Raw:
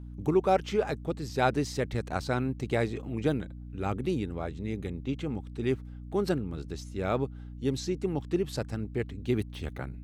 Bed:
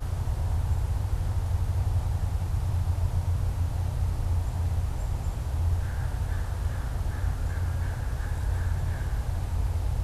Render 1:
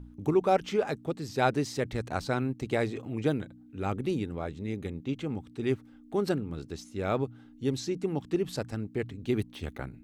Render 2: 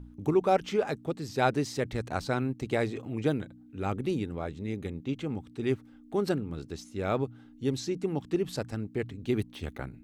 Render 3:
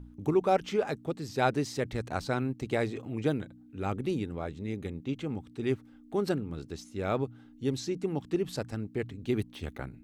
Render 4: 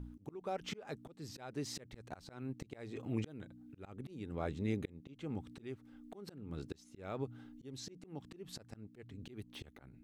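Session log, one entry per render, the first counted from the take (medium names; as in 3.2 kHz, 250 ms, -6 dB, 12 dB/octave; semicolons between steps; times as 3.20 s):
de-hum 60 Hz, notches 3
no audible change
trim -1 dB
compression 20:1, threshold -28 dBFS, peak gain reduction 10 dB; slow attack 454 ms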